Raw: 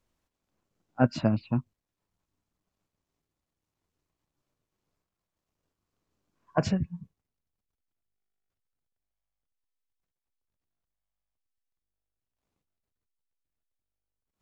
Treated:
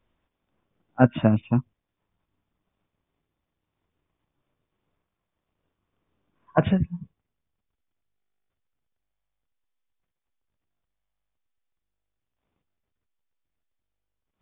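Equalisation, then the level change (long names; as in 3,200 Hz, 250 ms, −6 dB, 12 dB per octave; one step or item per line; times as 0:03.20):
linear-phase brick-wall low-pass 3,700 Hz
+5.5 dB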